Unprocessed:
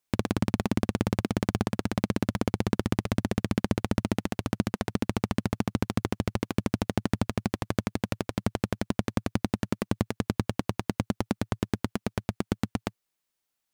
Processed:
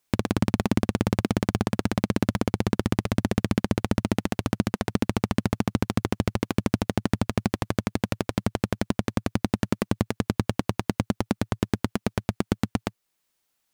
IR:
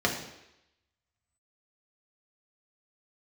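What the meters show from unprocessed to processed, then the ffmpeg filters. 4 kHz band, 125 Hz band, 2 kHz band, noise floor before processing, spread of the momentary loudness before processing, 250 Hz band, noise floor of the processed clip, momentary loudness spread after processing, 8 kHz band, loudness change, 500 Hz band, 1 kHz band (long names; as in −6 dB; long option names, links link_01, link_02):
+3.0 dB, +3.0 dB, +3.0 dB, −83 dBFS, 4 LU, +3.0 dB, −78 dBFS, 3 LU, +3.0 dB, +3.0 dB, +3.0 dB, +3.0 dB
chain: -af "alimiter=limit=-14.5dB:level=0:latency=1:release=384,volume=7dB"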